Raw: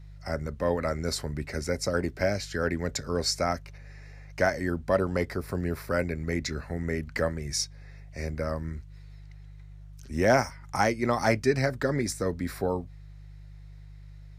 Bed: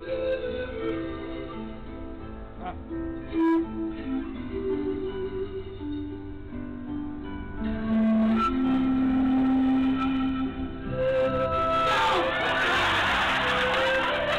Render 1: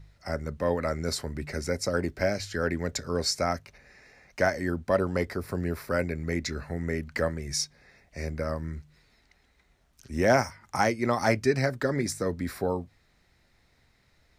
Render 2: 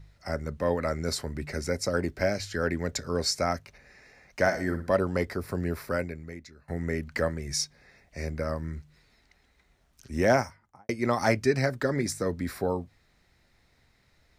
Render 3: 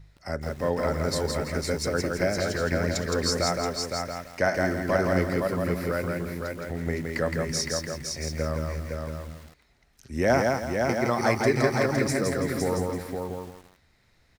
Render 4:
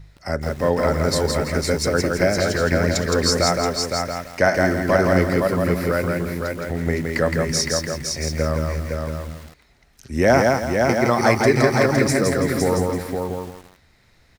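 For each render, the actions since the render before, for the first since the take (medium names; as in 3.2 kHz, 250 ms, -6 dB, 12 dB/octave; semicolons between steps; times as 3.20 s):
de-hum 50 Hz, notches 3
4.40–4.95 s: flutter echo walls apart 10.2 m, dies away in 0.36 s; 5.87–6.68 s: fade out quadratic, to -21.5 dB; 10.23–10.89 s: studio fade out
on a send: delay 512 ms -4.5 dB; on the sum: bit-crushed delay 166 ms, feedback 35%, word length 8-bit, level -3 dB
trim +7 dB; peak limiter -3 dBFS, peak gain reduction 2 dB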